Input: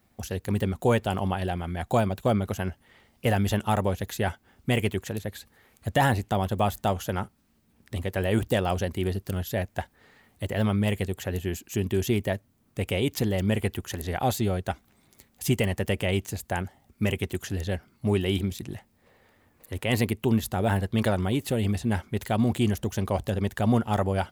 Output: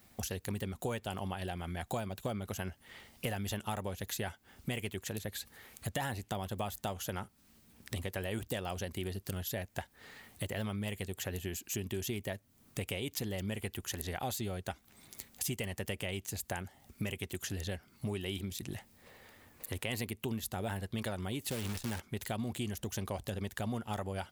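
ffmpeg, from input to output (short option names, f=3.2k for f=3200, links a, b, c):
-filter_complex "[0:a]asettb=1/sr,asplit=3[a][b][c];[a]atrim=end=21.514[d];[b]atrim=start=21.51:end=22.01,asetpts=PTS-STARTPTS,afade=t=in:d=0.004:c=qsin,afade=t=out:st=0.496:d=0.004:c=qsin,acrusher=bits=6:dc=4:mix=0:aa=0.000001[e];[c]atrim=start=22.006[f];[d][e]acrossfade=d=0.004:c1=hsin:c2=qsin[g];[g][f]acrossfade=d=0.004:c1=qsin:c2=hsin,highshelf=f=2.1k:g=8,acompressor=threshold=-38dB:ratio=4,volume=1dB"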